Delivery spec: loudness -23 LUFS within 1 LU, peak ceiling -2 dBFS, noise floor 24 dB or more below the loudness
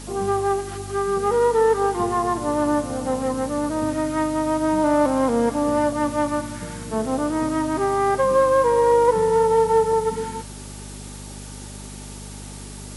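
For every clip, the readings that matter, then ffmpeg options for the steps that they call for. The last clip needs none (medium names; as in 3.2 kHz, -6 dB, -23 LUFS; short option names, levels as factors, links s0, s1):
hum 50 Hz; highest harmonic 250 Hz; hum level -35 dBFS; noise floor -36 dBFS; noise floor target -45 dBFS; loudness -21.0 LUFS; peak level -6.5 dBFS; loudness target -23.0 LUFS
-> -af "bandreject=f=50:t=h:w=4,bandreject=f=100:t=h:w=4,bandreject=f=150:t=h:w=4,bandreject=f=200:t=h:w=4,bandreject=f=250:t=h:w=4"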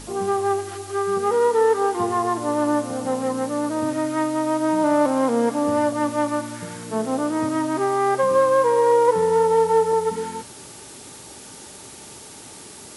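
hum not found; noise floor -41 dBFS; noise floor target -45 dBFS
-> -af "afftdn=nr=6:nf=-41"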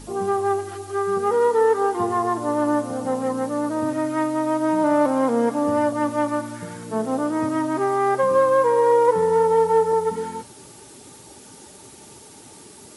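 noise floor -45 dBFS; loudness -21.0 LUFS; peak level -7.0 dBFS; loudness target -23.0 LUFS
-> -af "volume=0.794"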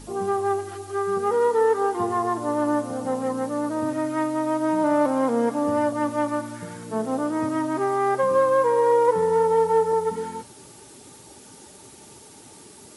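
loudness -23.0 LUFS; peak level -9.0 dBFS; noise floor -47 dBFS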